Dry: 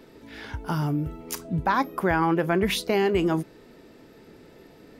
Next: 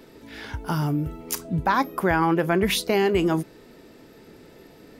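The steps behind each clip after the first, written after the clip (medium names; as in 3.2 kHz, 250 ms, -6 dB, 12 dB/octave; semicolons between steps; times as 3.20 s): treble shelf 5.4 kHz +4.5 dB; trim +1.5 dB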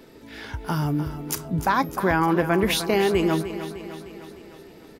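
feedback delay 303 ms, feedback 58%, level -11.5 dB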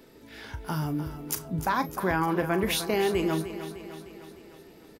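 treble shelf 8 kHz +5 dB; doubling 38 ms -13 dB; trim -5.5 dB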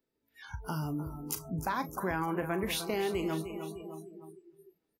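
spectral noise reduction 29 dB; compression 1.5:1, threshold -36 dBFS, peak gain reduction 5.5 dB; trim -1.5 dB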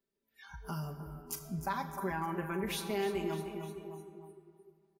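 comb 5.1 ms, depth 94%; on a send at -10 dB: reverberation RT60 2.5 s, pre-delay 35 ms; on the sum: trim -7 dB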